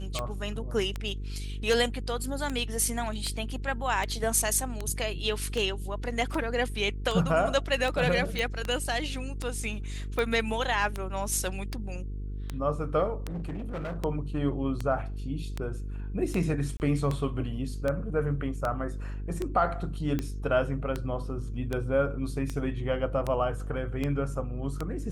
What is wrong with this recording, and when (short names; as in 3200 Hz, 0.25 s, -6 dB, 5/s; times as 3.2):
buzz 50 Hz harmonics 9 -35 dBFS
tick 78 rpm -17 dBFS
8.39 pop
13.27–13.98 clipped -31 dBFS
16.77–16.8 gap 29 ms